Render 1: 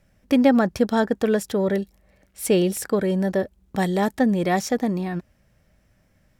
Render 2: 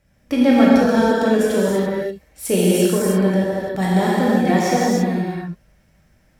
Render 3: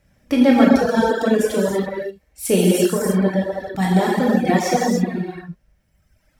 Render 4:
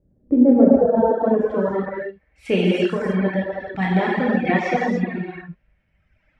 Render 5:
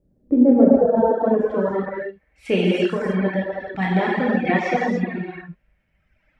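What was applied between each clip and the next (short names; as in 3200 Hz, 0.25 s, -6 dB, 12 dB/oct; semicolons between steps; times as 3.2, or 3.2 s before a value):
non-linear reverb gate 0.36 s flat, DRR -7 dB; gain -2.5 dB
reverb removal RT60 1.5 s; gain +2 dB
low-pass sweep 380 Hz -> 2400 Hz, 0.37–2.46; gain -3 dB
bell 90 Hz -5 dB 1.1 oct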